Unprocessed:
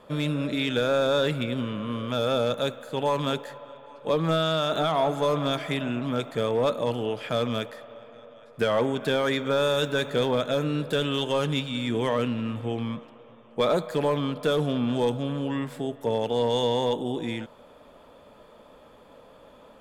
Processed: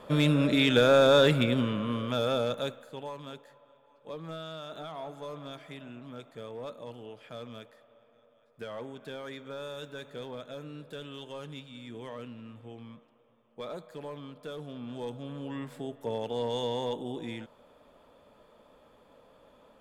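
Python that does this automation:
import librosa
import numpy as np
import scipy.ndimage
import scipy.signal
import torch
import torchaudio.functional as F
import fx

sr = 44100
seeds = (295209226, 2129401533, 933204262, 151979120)

y = fx.gain(x, sr, db=fx.line((1.42, 3.0), (2.7, -6.5), (3.16, -16.5), (14.64, -16.5), (15.7, -7.5)))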